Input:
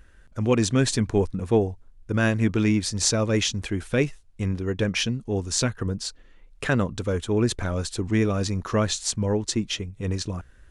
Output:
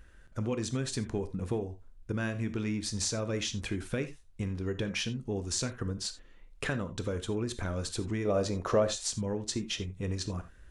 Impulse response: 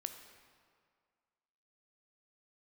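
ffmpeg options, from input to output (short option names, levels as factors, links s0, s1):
-filter_complex "[0:a]acompressor=threshold=0.0447:ratio=6,asettb=1/sr,asplit=3[s0][s1][s2];[s0]atrim=end=8.254[s3];[s1]atrim=start=8.25:end=9.01,asetpts=PTS-STARTPTS,afade=t=in:d=0.004:c=qsin,afade=t=out:st=0.756:d=0.004:c=qsin,equalizer=f=590:w=1.2:g=13[s4];[s2]atrim=start=9.006[s5];[s3][s4]acrossfade=d=0.004:c1=hsin:c2=qsin[s6];[s6][s5]acrossfade=d=0.004:c1=qsin:c2=hsin[s7];[1:a]atrim=start_sample=2205,afade=t=out:st=0.14:d=0.01,atrim=end_sample=6615[s8];[s7][s8]afir=irnorm=-1:irlink=0"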